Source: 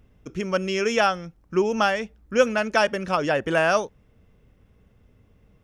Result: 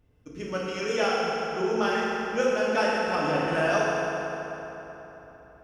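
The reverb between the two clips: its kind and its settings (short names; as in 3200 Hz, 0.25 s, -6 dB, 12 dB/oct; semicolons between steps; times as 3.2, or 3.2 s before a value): FDN reverb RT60 3.8 s, high-frequency decay 0.65×, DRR -7 dB; gain -10.5 dB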